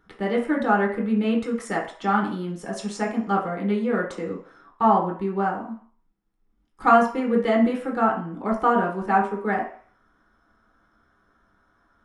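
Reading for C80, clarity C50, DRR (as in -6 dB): 11.0 dB, 7.0 dB, -3.0 dB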